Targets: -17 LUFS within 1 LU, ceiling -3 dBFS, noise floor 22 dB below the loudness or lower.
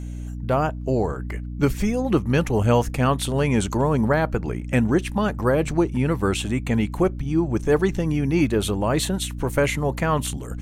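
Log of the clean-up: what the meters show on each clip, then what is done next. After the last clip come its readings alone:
hum 60 Hz; harmonics up to 300 Hz; hum level -29 dBFS; loudness -22.5 LUFS; peak -6.0 dBFS; loudness target -17.0 LUFS
-> notches 60/120/180/240/300 Hz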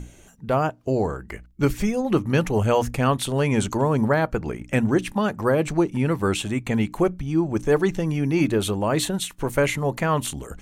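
hum none; loudness -23.0 LUFS; peak -6.5 dBFS; loudness target -17.0 LUFS
-> gain +6 dB; limiter -3 dBFS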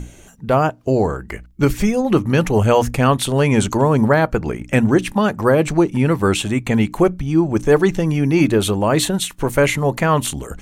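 loudness -17.0 LUFS; peak -3.0 dBFS; noise floor -44 dBFS

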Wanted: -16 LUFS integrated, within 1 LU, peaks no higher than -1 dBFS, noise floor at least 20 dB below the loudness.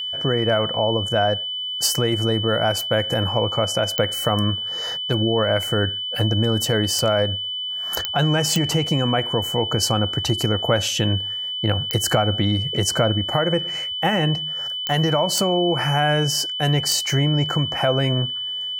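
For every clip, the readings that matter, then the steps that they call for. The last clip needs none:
clicks 8; steady tone 3000 Hz; tone level -25 dBFS; loudness -20.5 LUFS; peak -3.5 dBFS; loudness target -16.0 LUFS
-> de-click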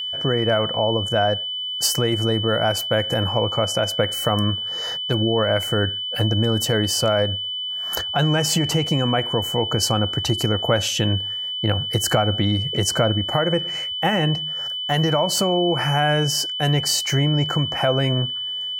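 clicks 0; steady tone 3000 Hz; tone level -25 dBFS
-> notch 3000 Hz, Q 30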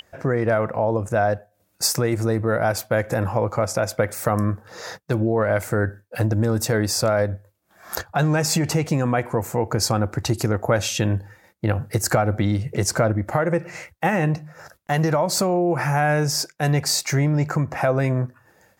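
steady tone none; loudness -22.0 LUFS; peak -4.5 dBFS; loudness target -16.0 LUFS
-> gain +6 dB; limiter -1 dBFS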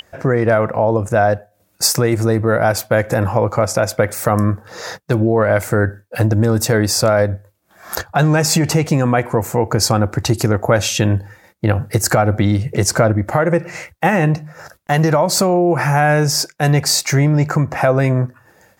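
loudness -16.0 LUFS; peak -1.0 dBFS; noise floor -59 dBFS

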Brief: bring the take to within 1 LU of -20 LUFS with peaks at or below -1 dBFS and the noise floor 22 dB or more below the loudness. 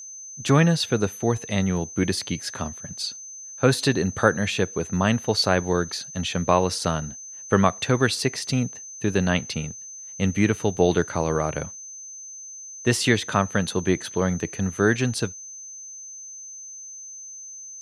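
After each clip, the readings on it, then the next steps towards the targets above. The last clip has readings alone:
steady tone 6200 Hz; tone level -37 dBFS; loudness -23.5 LUFS; peak -2.5 dBFS; loudness target -20.0 LUFS
-> notch 6200 Hz, Q 30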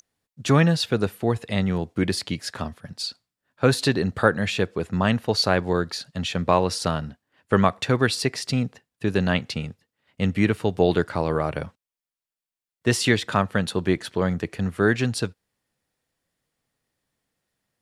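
steady tone none; loudness -24.0 LUFS; peak -2.0 dBFS; loudness target -20.0 LUFS
-> gain +4 dB; limiter -1 dBFS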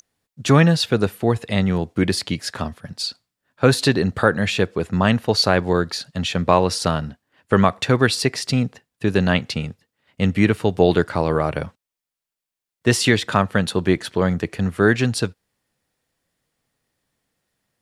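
loudness -20.0 LUFS; peak -1.0 dBFS; noise floor -87 dBFS

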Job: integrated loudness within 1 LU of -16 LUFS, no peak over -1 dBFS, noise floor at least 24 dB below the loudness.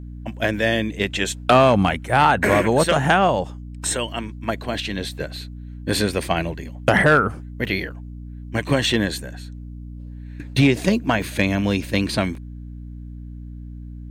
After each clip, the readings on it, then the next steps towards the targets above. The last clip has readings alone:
dropouts 6; longest dropout 2.1 ms; hum 60 Hz; harmonics up to 300 Hz; hum level -32 dBFS; loudness -20.5 LUFS; peak -4.5 dBFS; loudness target -16.0 LUFS
-> interpolate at 0.6/5.36/6.22/7.65/11.22/12.35, 2.1 ms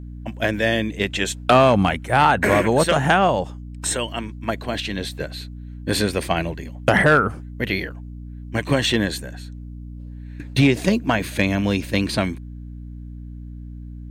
dropouts 0; hum 60 Hz; harmonics up to 300 Hz; hum level -32 dBFS
-> de-hum 60 Hz, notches 5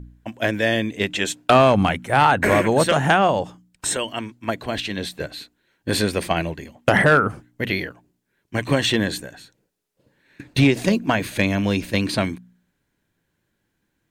hum none; loudness -20.5 LUFS; peak -4.0 dBFS; loudness target -16.0 LUFS
-> gain +4.5 dB; limiter -1 dBFS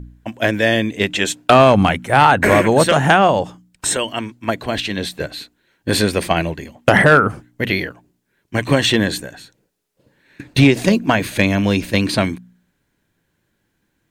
loudness -16.0 LUFS; peak -1.0 dBFS; noise floor -69 dBFS

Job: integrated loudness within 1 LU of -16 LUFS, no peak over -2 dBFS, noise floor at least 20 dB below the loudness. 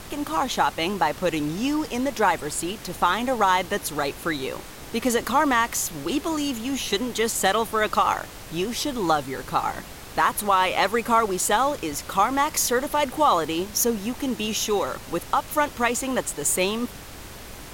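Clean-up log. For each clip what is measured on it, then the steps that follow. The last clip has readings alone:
noise floor -40 dBFS; noise floor target -44 dBFS; loudness -24.0 LUFS; peak -8.0 dBFS; loudness target -16.0 LUFS
-> noise print and reduce 6 dB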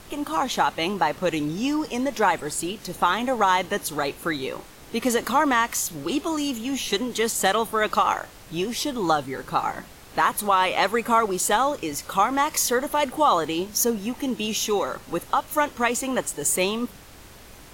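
noise floor -46 dBFS; loudness -24.0 LUFS; peak -8.5 dBFS; loudness target -16.0 LUFS
-> gain +8 dB; limiter -2 dBFS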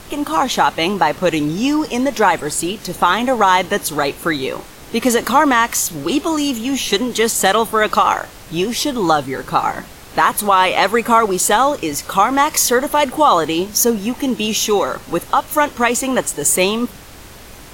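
loudness -16.0 LUFS; peak -2.0 dBFS; noise floor -38 dBFS

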